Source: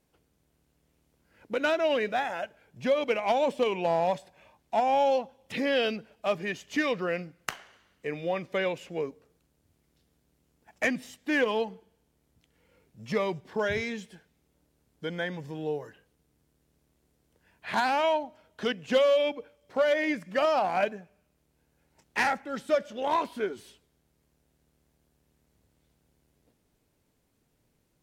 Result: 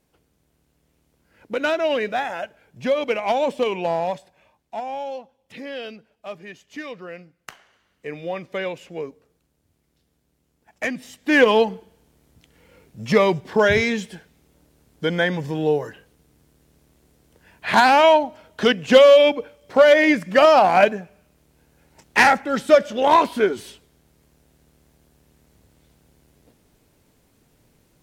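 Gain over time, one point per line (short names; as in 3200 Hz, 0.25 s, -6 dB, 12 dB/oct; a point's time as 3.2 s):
3.78 s +4.5 dB
5.05 s -6.5 dB
7.41 s -6.5 dB
8.1 s +1.5 dB
10.95 s +1.5 dB
11.44 s +12 dB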